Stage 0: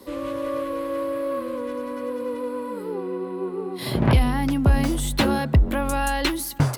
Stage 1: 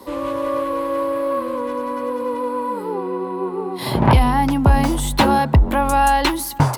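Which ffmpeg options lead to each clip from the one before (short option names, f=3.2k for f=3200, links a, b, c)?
-af "equalizer=f=910:w=2.5:g=10.5,volume=3.5dB"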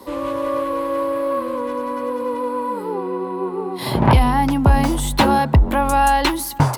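-af anull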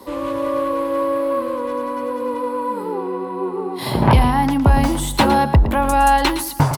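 -af "aecho=1:1:112|224:0.266|0.0426"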